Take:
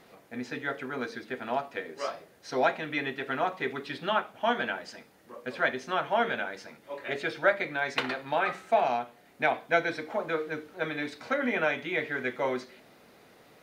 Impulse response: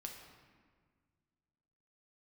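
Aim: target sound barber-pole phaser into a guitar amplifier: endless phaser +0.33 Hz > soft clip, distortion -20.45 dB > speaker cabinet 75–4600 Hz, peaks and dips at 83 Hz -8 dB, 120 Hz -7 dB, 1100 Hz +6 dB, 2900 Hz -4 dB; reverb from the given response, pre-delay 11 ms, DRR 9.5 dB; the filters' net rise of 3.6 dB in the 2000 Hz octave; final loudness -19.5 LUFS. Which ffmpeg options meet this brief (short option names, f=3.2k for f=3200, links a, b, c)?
-filter_complex "[0:a]equalizer=f=2k:t=o:g=4.5,asplit=2[a][b];[1:a]atrim=start_sample=2205,adelay=11[c];[b][c]afir=irnorm=-1:irlink=0,volume=-6dB[d];[a][d]amix=inputs=2:normalize=0,asplit=2[e][f];[f]afreqshift=0.33[g];[e][g]amix=inputs=2:normalize=1,asoftclip=threshold=-17dB,highpass=75,equalizer=f=83:t=q:w=4:g=-8,equalizer=f=120:t=q:w=4:g=-7,equalizer=f=1.1k:t=q:w=4:g=6,equalizer=f=2.9k:t=q:w=4:g=-4,lowpass=f=4.6k:w=0.5412,lowpass=f=4.6k:w=1.3066,volume=12.5dB"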